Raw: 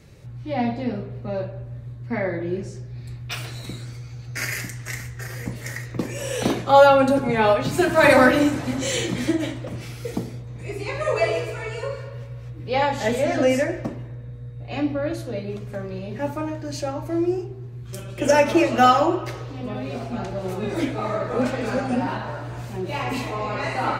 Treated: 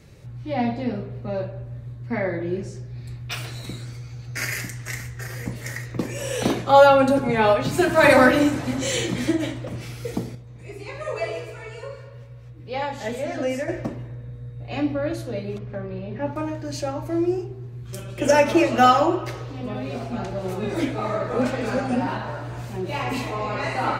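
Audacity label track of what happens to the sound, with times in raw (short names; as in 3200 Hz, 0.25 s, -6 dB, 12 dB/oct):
10.350000	13.680000	gain -6.5 dB
15.580000	16.360000	air absorption 240 m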